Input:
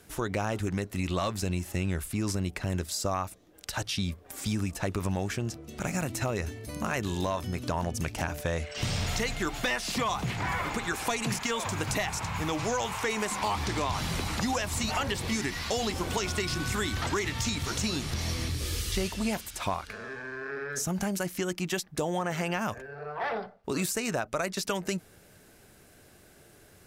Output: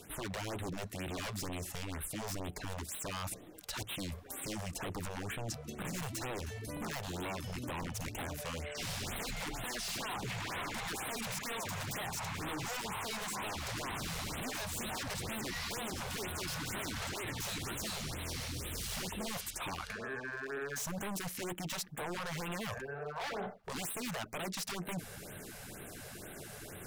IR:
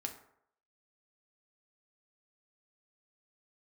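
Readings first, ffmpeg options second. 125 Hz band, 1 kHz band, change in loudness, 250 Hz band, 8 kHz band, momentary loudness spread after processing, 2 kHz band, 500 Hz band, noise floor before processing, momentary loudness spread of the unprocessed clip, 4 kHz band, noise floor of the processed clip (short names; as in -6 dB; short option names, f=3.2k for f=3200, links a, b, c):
-10.0 dB, -8.5 dB, -8.5 dB, -10.5 dB, -6.0 dB, 4 LU, -7.0 dB, -10.0 dB, -57 dBFS, 5 LU, -6.5 dB, -49 dBFS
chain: -af "aeval=exprs='0.0299*(abs(mod(val(0)/0.0299+3,4)-2)-1)':c=same,areverse,acompressor=threshold=-49dB:ratio=4,areverse,equalizer=f=63:w=2.2:g=-8,afftfilt=real='re*(1-between(b*sr/1024,270*pow(5900/270,0.5+0.5*sin(2*PI*2.1*pts/sr))/1.41,270*pow(5900/270,0.5+0.5*sin(2*PI*2.1*pts/sr))*1.41))':imag='im*(1-between(b*sr/1024,270*pow(5900/270,0.5+0.5*sin(2*PI*2.1*pts/sr))/1.41,270*pow(5900/270,0.5+0.5*sin(2*PI*2.1*pts/sr))*1.41))':win_size=1024:overlap=0.75,volume=9.5dB"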